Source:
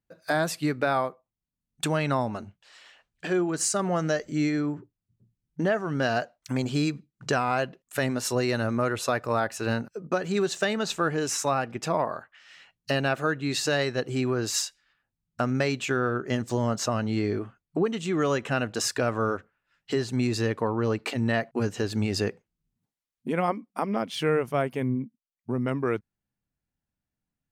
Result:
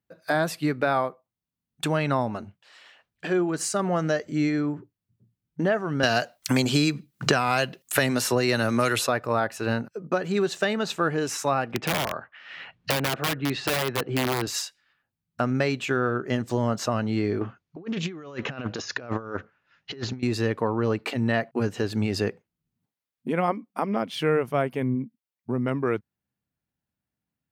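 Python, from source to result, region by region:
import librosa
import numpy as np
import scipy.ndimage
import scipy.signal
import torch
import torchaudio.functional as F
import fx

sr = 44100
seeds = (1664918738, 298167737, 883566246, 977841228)

y = fx.chain(x, sr, fx.high_shelf(hz=2800.0, db=11.5),
    fx.band_squash(depth_pct=100), at=(6.03, 9.07))
y = fx.chain(y, sr, fx.lowpass(hz=2900.0, slope=12),
    fx.overflow_wrap(gain_db=20.0),
    fx.band_squash(depth_pct=70), at=(11.73, 14.47))
y = fx.chain(y, sr, fx.over_compress(threshold_db=-32.0, ratio=-0.5),
    fx.brickwall_lowpass(high_hz=7100.0),
    fx.doppler_dist(depth_ms=0.21), at=(17.41, 20.23))
y = scipy.signal.sosfilt(scipy.signal.butter(2, 73.0, 'highpass', fs=sr, output='sos'), y)
y = fx.peak_eq(y, sr, hz=7200.0, db=-5.5, octaves=1.1)
y = F.gain(torch.from_numpy(y), 1.5).numpy()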